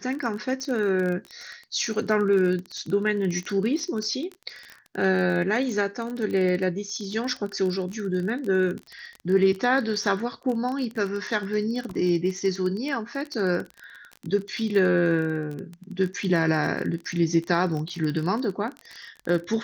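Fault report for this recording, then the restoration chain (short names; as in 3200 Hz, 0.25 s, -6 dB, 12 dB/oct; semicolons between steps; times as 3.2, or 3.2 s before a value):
crackle 24/s -29 dBFS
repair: de-click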